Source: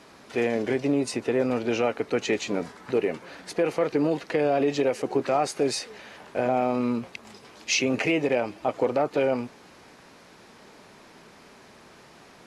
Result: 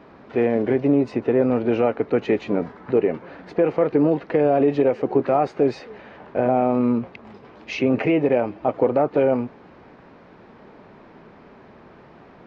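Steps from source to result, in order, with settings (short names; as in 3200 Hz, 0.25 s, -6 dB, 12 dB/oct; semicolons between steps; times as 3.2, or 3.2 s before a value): tape spacing loss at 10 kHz 44 dB; gain +7.5 dB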